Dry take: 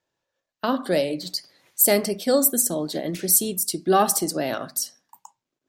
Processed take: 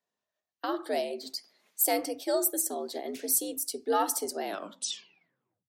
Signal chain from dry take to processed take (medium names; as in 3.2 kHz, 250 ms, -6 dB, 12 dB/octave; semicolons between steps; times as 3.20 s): tape stop on the ending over 1.24 s; frequency shift +82 Hz; trim -8.5 dB